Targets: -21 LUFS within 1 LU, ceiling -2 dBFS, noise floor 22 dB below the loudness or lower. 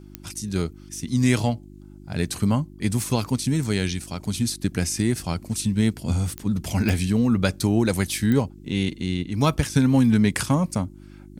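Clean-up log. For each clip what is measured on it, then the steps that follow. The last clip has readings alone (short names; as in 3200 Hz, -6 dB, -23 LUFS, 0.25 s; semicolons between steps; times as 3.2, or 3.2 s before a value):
clicks 4; hum 50 Hz; harmonics up to 350 Hz; hum level -44 dBFS; loudness -23.5 LUFS; peak -5.5 dBFS; loudness target -21.0 LUFS
-> de-click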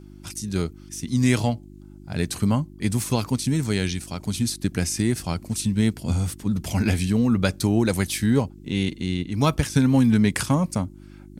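clicks 0; hum 50 Hz; harmonics up to 350 Hz; hum level -44 dBFS
-> de-hum 50 Hz, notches 7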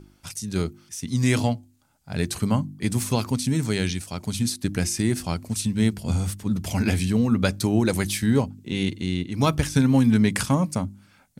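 hum none; loudness -24.0 LUFS; peak -5.5 dBFS; loudness target -21.0 LUFS
-> gain +3 dB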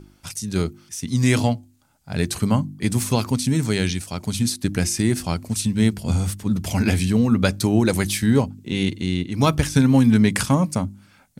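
loudness -21.0 LUFS; peak -2.5 dBFS; noise floor -55 dBFS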